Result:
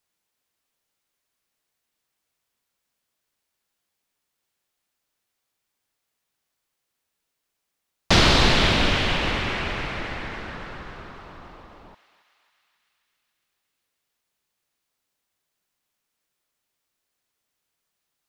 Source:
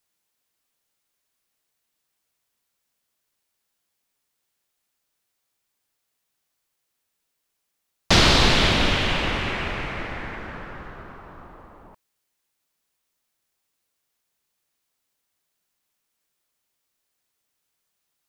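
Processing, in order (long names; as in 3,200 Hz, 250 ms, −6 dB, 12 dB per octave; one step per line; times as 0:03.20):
high-shelf EQ 5,700 Hz −4.5 dB
feedback echo with a high-pass in the loop 276 ms, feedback 71%, high-pass 930 Hz, level −13.5 dB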